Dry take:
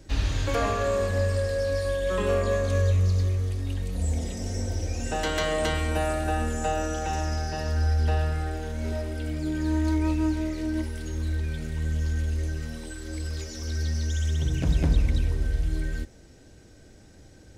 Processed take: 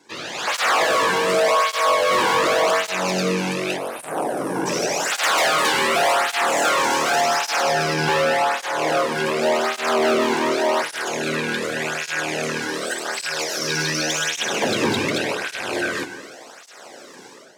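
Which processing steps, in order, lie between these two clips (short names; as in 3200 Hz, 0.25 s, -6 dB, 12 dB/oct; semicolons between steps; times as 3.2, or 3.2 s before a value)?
rattling part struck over -27 dBFS, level -34 dBFS; spectral gain 3.77–4.66, 1700–8600 Hz -22 dB; full-wave rectifier; weighting filter A; AGC gain up to 14.5 dB; bell 780 Hz +4 dB 2 oct; non-linear reverb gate 0.33 s flat, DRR 11 dB; hard clip -18 dBFS, distortion -7 dB; HPF 86 Hz; tape flanging out of phase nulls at 0.87 Hz, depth 1.7 ms; gain +4.5 dB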